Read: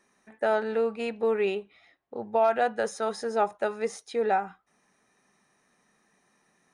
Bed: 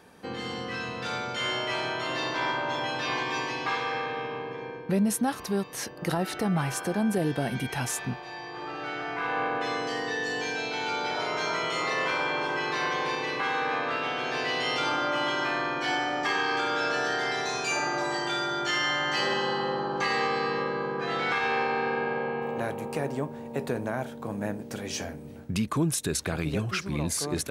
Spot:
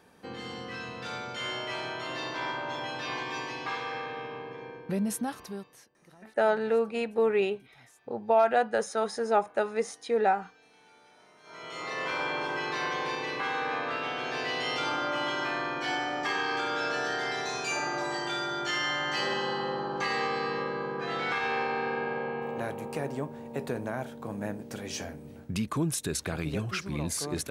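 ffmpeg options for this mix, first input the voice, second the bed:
-filter_complex "[0:a]adelay=5950,volume=0.5dB[a];[1:a]volume=21dB,afade=t=out:st=5.18:d=0.69:silence=0.0630957,afade=t=in:st=11.43:d=0.79:silence=0.0501187[b];[a][b]amix=inputs=2:normalize=0"

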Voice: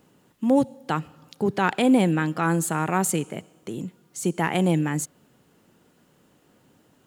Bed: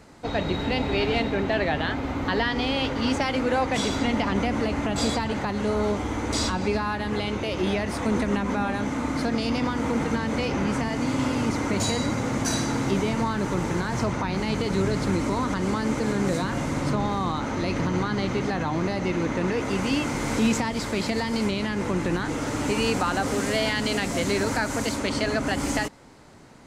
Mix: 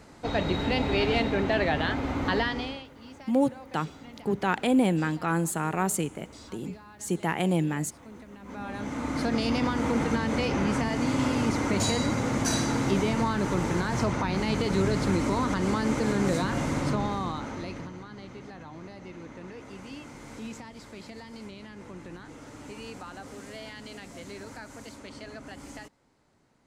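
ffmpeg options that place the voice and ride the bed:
-filter_complex "[0:a]adelay=2850,volume=-4dB[a];[1:a]volume=20.5dB,afade=t=out:st=2.33:d=0.52:silence=0.0841395,afade=t=in:st=8.39:d=0.99:silence=0.0841395,afade=t=out:st=16.7:d=1.26:silence=0.149624[b];[a][b]amix=inputs=2:normalize=0"

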